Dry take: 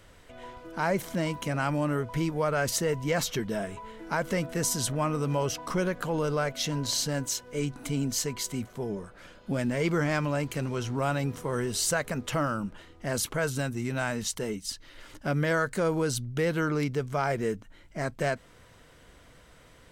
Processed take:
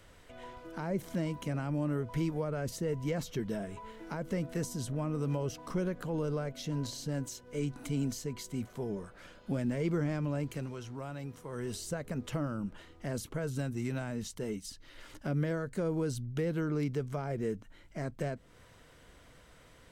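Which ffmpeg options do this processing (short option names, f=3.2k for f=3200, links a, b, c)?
-filter_complex "[0:a]asettb=1/sr,asplit=3[a][b][c];[a]atrim=end=3.914[d];[b]atrim=start=3.91:end=5.91,asetpts=PTS-STARTPTS,afade=t=in:d=0.004:c=qsin,afade=t=out:st=1.996:d=0.004:c=qsin,aeval=exprs='sgn(val(0))*max(abs(val(0))-0.00112,0)':c=same[e];[c]atrim=start=5.906[f];[d][e]acrossfade=d=0.004:c1=hsin:c2=qsin[g];[g][f]acrossfade=d=0.004:c1=qsin:c2=hsin,asplit=3[h][i][j];[h]atrim=end=10.77,asetpts=PTS-STARTPTS,afade=t=out:st=10.44:d=0.33:silence=0.375837[k];[i]atrim=start=10.77:end=11.49,asetpts=PTS-STARTPTS,volume=-8.5dB[l];[j]atrim=start=11.49,asetpts=PTS-STARTPTS,afade=t=in:d=0.33:silence=0.375837[m];[k][l][m]concat=n=3:v=0:a=1,acrossover=split=490[n][o];[o]acompressor=threshold=-41dB:ratio=4[p];[n][p]amix=inputs=2:normalize=0,volume=-3dB"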